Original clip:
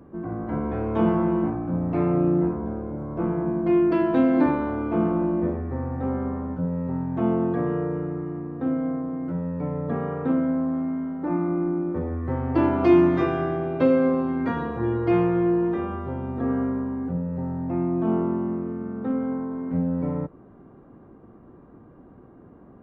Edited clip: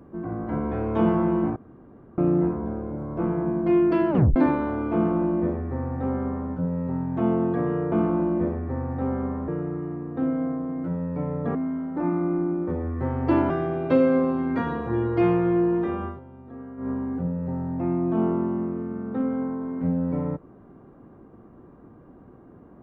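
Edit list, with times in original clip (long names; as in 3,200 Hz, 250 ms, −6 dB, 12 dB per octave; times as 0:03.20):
0:01.56–0:02.18: fill with room tone
0:04.10: tape stop 0.26 s
0:04.94–0:06.50: duplicate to 0:07.92
0:09.99–0:10.82: remove
0:12.77–0:13.40: remove
0:15.97–0:16.80: duck −15 dB, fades 0.13 s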